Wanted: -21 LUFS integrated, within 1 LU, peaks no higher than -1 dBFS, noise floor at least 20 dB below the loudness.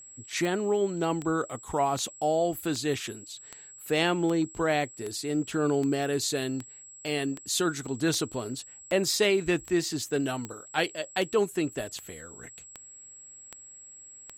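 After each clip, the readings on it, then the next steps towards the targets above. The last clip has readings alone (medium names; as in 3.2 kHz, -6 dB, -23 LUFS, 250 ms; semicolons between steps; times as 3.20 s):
clicks found 19; steady tone 7.7 kHz; tone level -46 dBFS; loudness -28.5 LUFS; peak level -11.0 dBFS; loudness target -21.0 LUFS
-> de-click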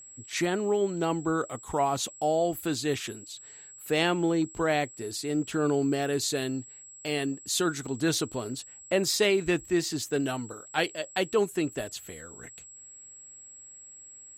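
clicks found 0; steady tone 7.7 kHz; tone level -46 dBFS
-> band-stop 7.7 kHz, Q 30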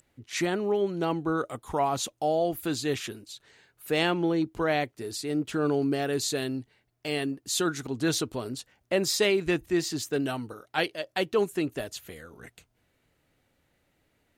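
steady tone not found; loudness -28.5 LUFS; peak level -11.0 dBFS; loudness target -21.0 LUFS
-> trim +7.5 dB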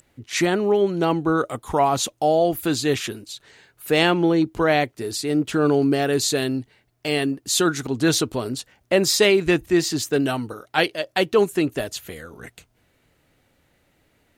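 loudness -21.5 LUFS; peak level -3.5 dBFS; noise floor -65 dBFS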